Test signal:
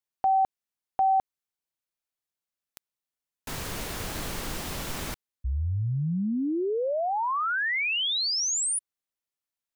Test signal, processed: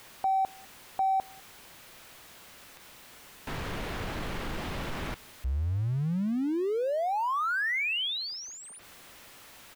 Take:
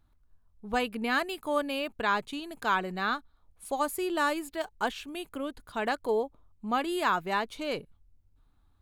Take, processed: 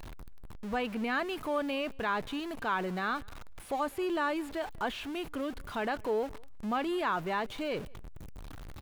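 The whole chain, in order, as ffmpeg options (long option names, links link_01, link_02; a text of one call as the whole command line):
ffmpeg -i in.wav -filter_complex "[0:a]aeval=exprs='val(0)+0.5*0.015*sgn(val(0))':channel_layout=same,acrossover=split=3600[link_01][link_02];[link_02]acompressor=threshold=-51dB:ratio=4:attack=1:release=60[link_03];[link_01][link_03]amix=inputs=2:normalize=0,asplit=2[link_04][link_05];[link_05]alimiter=level_in=2dB:limit=-24dB:level=0:latency=1:release=16,volume=-2dB,volume=1dB[link_06];[link_04][link_06]amix=inputs=2:normalize=0,asplit=2[link_07][link_08];[link_08]adelay=198.3,volume=-27dB,highshelf=frequency=4000:gain=-4.46[link_09];[link_07][link_09]amix=inputs=2:normalize=0,volume=-8dB" out.wav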